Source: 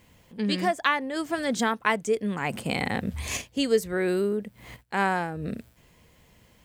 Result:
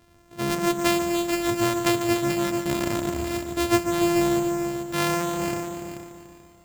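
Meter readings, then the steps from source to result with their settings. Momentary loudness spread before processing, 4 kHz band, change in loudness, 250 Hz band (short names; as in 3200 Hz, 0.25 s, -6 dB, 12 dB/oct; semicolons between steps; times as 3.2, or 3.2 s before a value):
8 LU, +2.5 dB, +3.0 dB, +5.5 dB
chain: sample sorter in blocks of 128 samples; multi-head echo 0.145 s, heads all three, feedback 40%, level -10 dB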